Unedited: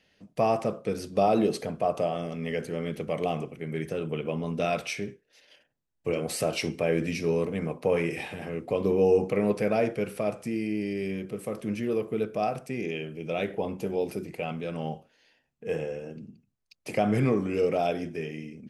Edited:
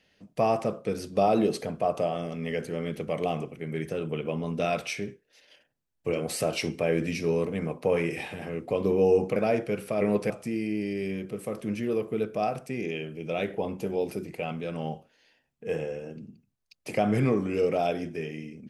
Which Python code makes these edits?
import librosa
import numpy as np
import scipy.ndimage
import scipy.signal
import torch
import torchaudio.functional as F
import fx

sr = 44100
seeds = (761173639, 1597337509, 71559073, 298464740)

y = fx.edit(x, sr, fx.move(start_s=9.36, length_s=0.29, to_s=10.3), tone=tone)